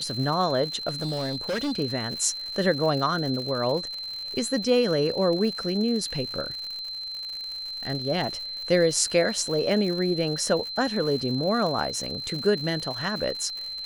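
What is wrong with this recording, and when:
crackle 120/s -32 dBFS
tone 4100 Hz -32 dBFS
0.88–1.73 clipped -24.5 dBFS

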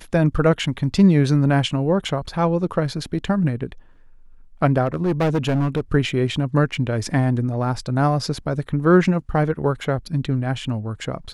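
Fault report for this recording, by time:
4.85–5.8 clipped -15.5 dBFS

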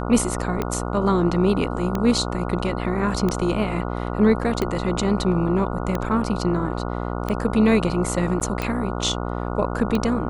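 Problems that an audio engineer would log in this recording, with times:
buzz 60 Hz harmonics 24 -27 dBFS
tick 45 rpm -11 dBFS
8.4–8.41 gap 9 ms

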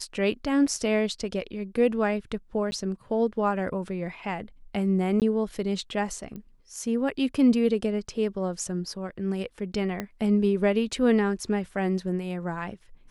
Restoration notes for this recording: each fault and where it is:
2.71–2.72 gap 10 ms
5.2–5.22 gap 18 ms
6.36 pop -27 dBFS
10 pop -16 dBFS

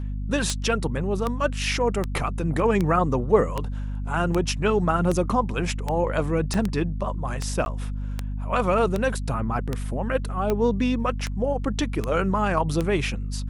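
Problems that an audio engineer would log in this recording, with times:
hum 50 Hz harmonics 5 -29 dBFS
tick 78 rpm -12 dBFS
6.54 pop -14 dBFS
7.65–7.66 gap 11 ms

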